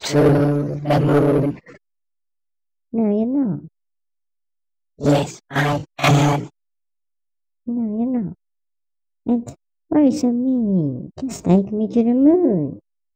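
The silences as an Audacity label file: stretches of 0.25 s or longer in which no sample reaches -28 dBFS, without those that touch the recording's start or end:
1.550000	2.940000	silence
3.590000	5.010000	silence
6.470000	7.680000	silence
8.320000	9.260000	silence
9.500000	9.910000	silence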